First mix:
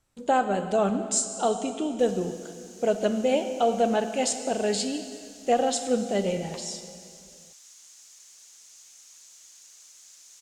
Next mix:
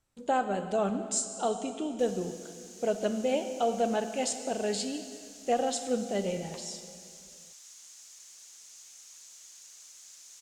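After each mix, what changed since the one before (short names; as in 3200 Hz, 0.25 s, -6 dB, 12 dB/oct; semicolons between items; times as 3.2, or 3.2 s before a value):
speech -5.0 dB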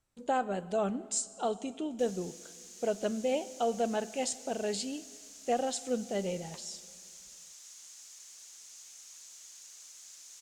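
speech: send -11.5 dB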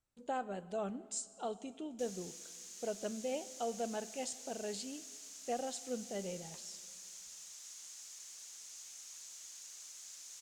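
speech -8.0 dB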